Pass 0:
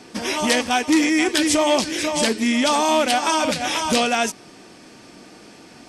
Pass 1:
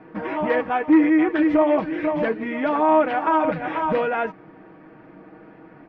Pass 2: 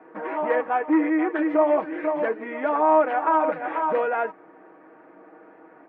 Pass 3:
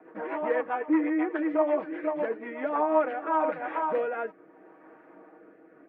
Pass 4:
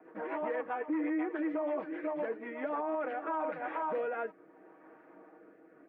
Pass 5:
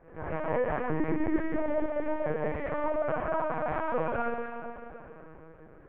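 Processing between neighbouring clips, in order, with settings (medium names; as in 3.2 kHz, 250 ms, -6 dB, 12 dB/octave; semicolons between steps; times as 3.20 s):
low-pass 1.8 kHz 24 dB/octave; comb 6.3 ms, depth 64%; trim -1.5 dB
three-band isolator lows -23 dB, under 310 Hz, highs -15 dB, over 2.1 kHz
rotary cabinet horn 8 Hz, later 0.75 Hz, at 2.40 s; gain riding within 4 dB 2 s; trim -3 dB
peak limiter -22.5 dBFS, peak gain reduction 11 dB; trim -4 dB
plate-style reverb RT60 2.4 s, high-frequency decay 1×, DRR -5 dB; LPC vocoder at 8 kHz pitch kept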